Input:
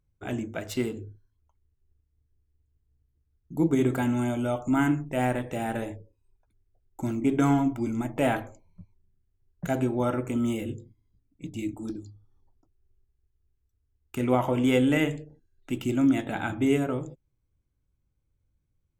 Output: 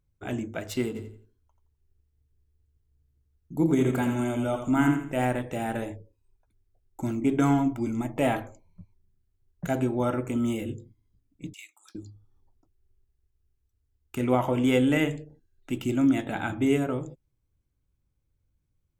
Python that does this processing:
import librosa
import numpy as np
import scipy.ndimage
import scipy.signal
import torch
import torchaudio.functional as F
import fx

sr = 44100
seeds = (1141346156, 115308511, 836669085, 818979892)

y = fx.echo_feedback(x, sr, ms=85, feedback_pct=31, wet_db=-7.0, at=(0.94, 5.24), fade=0.02)
y = fx.notch(y, sr, hz=1500.0, q=7.8, at=(7.95, 8.38))
y = fx.highpass(y, sr, hz=1300.0, slope=24, at=(11.53, 11.95))